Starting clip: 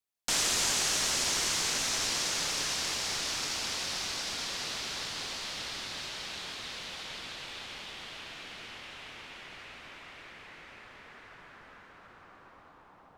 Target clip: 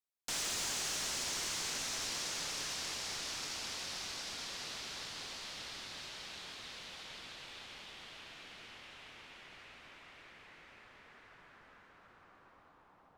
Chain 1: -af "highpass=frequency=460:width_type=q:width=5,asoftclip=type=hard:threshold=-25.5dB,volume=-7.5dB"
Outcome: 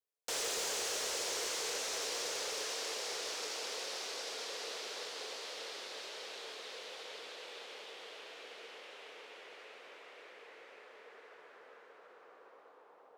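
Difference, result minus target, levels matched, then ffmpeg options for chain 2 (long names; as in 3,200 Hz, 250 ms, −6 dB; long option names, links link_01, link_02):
500 Hz band +9.5 dB
-af "asoftclip=type=hard:threshold=-25.5dB,volume=-7.5dB"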